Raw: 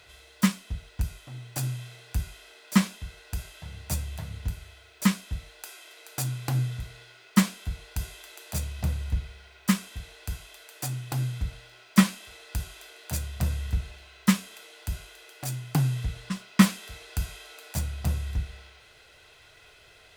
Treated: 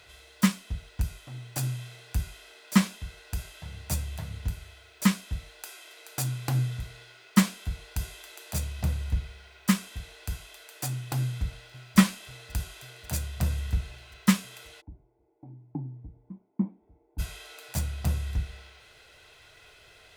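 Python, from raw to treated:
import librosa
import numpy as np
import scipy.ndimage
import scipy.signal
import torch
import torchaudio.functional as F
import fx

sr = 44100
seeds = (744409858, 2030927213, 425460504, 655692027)

y = fx.echo_throw(x, sr, start_s=11.2, length_s=0.77, ms=540, feedback_pct=80, wet_db=-18.0)
y = fx.formant_cascade(y, sr, vowel='u', at=(14.8, 17.18), fade=0.02)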